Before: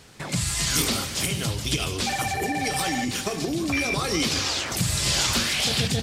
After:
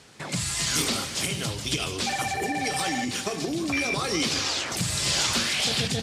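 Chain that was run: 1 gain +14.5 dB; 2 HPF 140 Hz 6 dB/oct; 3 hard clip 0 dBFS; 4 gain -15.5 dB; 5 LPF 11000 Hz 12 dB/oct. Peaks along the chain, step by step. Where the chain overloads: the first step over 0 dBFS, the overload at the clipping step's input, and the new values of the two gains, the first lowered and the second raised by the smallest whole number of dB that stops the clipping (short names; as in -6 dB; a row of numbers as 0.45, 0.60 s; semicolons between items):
+5.0, +5.0, 0.0, -15.5, -14.5 dBFS; step 1, 5.0 dB; step 1 +9.5 dB, step 4 -10.5 dB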